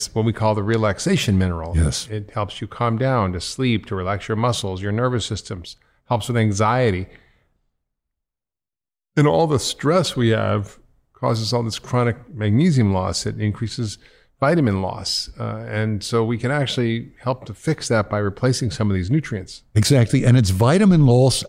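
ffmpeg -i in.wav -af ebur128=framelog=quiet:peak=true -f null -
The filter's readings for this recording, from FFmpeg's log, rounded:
Integrated loudness:
  I:         -20.1 LUFS
  Threshold: -30.4 LUFS
Loudness range:
  LRA:         3.8 LU
  Threshold: -41.5 LUFS
  LRA low:   -23.1 LUFS
  LRA high:  -19.2 LUFS
True peak:
  Peak:       -4.8 dBFS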